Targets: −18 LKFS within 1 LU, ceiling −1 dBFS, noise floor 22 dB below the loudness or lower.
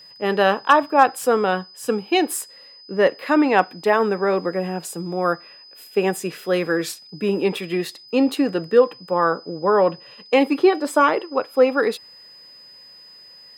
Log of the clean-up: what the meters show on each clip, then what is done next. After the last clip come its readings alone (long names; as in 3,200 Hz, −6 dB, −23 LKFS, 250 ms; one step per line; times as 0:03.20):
interfering tone 5,000 Hz; level of the tone −43 dBFS; integrated loudness −20.5 LKFS; sample peak −2.0 dBFS; target loudness −18.0 LKFS
→ notch filter 5,000 Hz, Q 30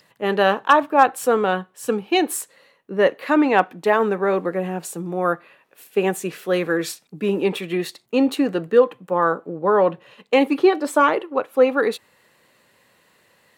interfering tone none found; integrated loudness −20.5 LKFS; sample peak −2.5 dBFS; target loudness −18.0 LKFS
→ level +2.5 dB
brickwall limiter −1 dBFS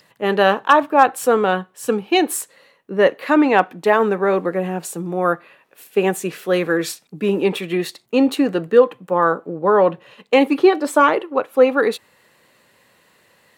integrated loudness −18.0 LKFS; sample peak −1.0 dBFS; background noise floor −58 dBFS